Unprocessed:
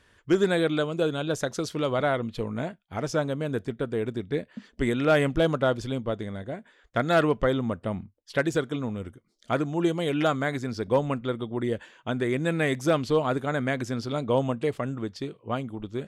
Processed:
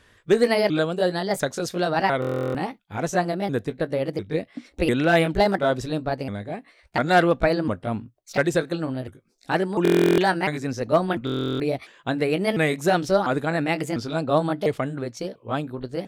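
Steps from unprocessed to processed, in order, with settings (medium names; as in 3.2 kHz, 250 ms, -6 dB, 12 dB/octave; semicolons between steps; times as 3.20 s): sawtooth pitch modulation +5 st, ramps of 698 ms; buffer glitch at 2.20/9.83/11.25 s, samples 1024, times 14; trim +4.5 dB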